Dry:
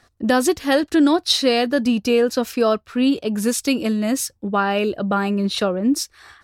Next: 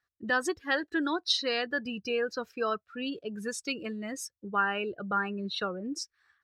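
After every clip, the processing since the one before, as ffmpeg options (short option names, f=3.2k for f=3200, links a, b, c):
-af "lowshelf=f=100:g=-7,afftdn=nr=19:nf=-28,equalizer=f=250:t=o:w=0.67:g=-10,equalizer=f=630:t=o:w=0.67:g=-8,equalizer=f=1.6k:t=o:w=0.67:g=7,equalizer=f=10k:t=o:w=0.67:g=-7,volume=-8.5dB"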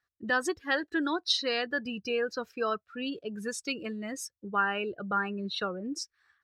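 -af anull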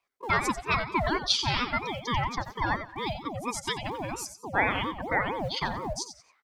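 -filter_complex "[0:a]acrossover=split=160|1500|1900[a][b][c][d];[a]acrusher=samples=21:mix=1:aa=0.000001:lfo=1:lforange=33.6:lforate=1.1[e];[e][b][c][d]amix=inputs=4:normalize=0,aecho=1:1:90|180|270:0.316|0.0854|0.0231,aeval=exprs='val(0)*sin(2*PI*530*n/s+530*0.4/4.3*sin(2*PI*4.3*n/s))':c=same,volume=5dB"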